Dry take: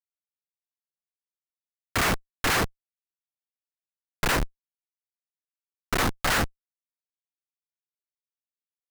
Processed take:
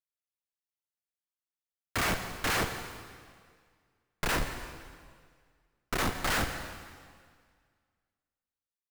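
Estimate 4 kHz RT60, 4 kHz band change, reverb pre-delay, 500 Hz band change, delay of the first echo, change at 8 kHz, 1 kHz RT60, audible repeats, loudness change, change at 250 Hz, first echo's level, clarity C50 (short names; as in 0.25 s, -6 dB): 1.8 s, -5.0 dB, 5 ms, -5.0 dB, 0.169 s, -5.0 dB, 1.9 s, 2, -6.0 dB, -5.0 dB, -17.0 dB, 7.0 dB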